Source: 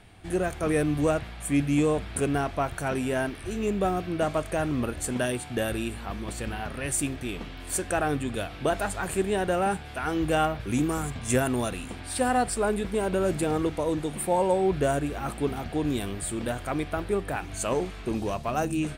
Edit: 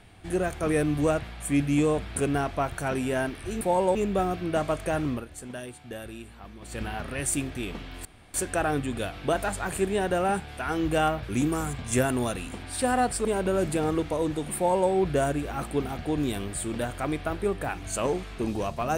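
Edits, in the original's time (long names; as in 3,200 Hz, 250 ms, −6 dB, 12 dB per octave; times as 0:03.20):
0:04.73–0:06.47: duck −10.5 dB, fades 0.18 s
0:07.71: splice in room tone 0.29 s
0:12.62–0:12.92: remove
0:14.23–0:14.57: duplicate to 0:03.61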